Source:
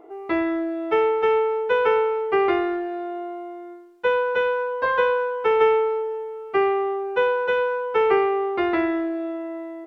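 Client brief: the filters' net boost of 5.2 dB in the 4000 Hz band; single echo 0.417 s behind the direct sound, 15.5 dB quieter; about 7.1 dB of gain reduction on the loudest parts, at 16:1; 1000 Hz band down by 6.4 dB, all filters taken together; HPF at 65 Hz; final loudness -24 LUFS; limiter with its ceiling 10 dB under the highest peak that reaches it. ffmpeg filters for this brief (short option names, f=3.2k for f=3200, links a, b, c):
-af "highpass=65,equalizer=f=1k:t=o:g=-8.5,equalizer=f=4k:t=o:g=8.5,acompressor=threshold=-23dB:ratio=16,alimiter=level_in=1.5dB:limit=-24dB:level=0:latency=1,volume=-1.5dB,aecho=1:1:417:0.168,volume=8dB"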